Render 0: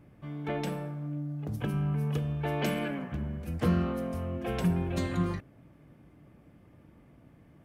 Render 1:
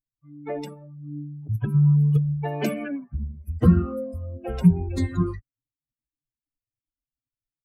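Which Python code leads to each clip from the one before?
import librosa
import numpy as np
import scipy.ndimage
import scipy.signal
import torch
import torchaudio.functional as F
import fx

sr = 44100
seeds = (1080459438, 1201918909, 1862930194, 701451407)

y = fx.bin_expand(x, sr, power=3.0)
y = fx.low_shelf(y, sr, hz=320.0, db=11.0)
y = fx.notch(y, sr, hz=3200.0, q=7.8)
y = y * librosa.db_to_amplitude(6.0)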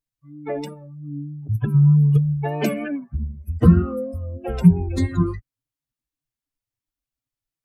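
y = fx.vibrato(x, sr, rate_hz=3.2, depth_cents=37.0)
y = y * librosa.db_to_amplitude(3.5)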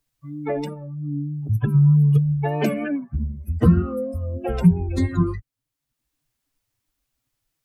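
y = fx.band_squash(x, sr, depth_pct=40)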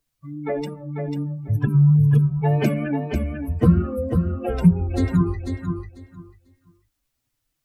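y = fx.spec_quant(x, sr, step_db=15)
y = fx.echo_feedback(y, sr, ms=494, feedback_pct=18, wet_db=-6.0)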